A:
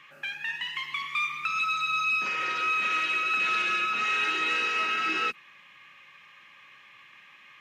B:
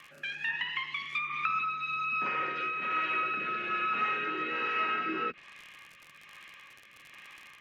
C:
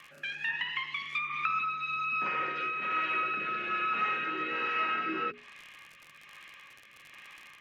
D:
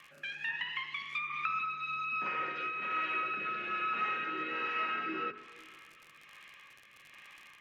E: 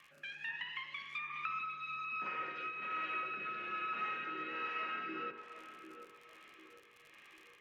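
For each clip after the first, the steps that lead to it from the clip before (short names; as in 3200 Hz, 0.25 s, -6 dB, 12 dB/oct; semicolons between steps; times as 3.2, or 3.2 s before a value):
rotary speaker horn 1.2 Hz; crackle 68/s -41 dBFS; treble ducked by the level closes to 1700 Hz, closed at -29 dBFS; gain +3 dB
notches 60/120/180/240/300/360/420 Hz
reverb RT60 2.4 s, pre-delay 48 ms, DRR 15 dB; gain -3.5 dB
narrowing echo 0.747 s, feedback 52%, band-pass 500 Hz, level -8 dB; gain -5.5 dB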